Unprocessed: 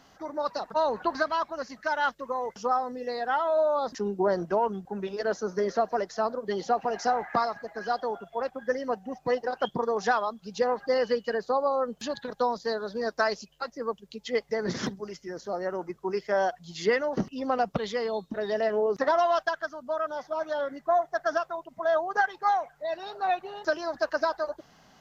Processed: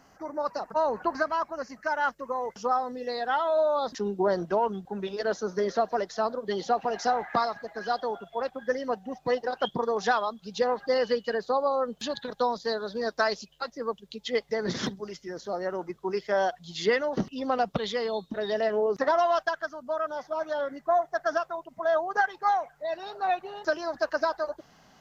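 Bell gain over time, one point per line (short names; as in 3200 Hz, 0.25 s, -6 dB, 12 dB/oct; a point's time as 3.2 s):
bell 3600 Hz 0.5 oct
1.98 s -13 dB
2.46 s -2.5 dB
2.97 s +6.5 dB
18.47 s +6.5 dB
19.06 s -1 dB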